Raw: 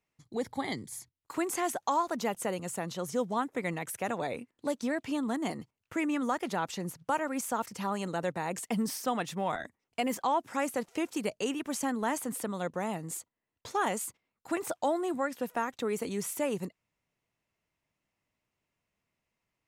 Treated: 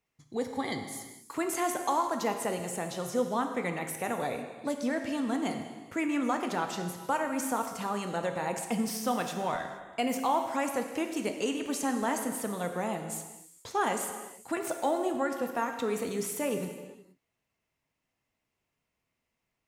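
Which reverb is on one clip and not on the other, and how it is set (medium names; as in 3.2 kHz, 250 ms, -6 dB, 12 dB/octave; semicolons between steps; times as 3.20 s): gated-style reverb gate 500 ms falling, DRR 4.5 dB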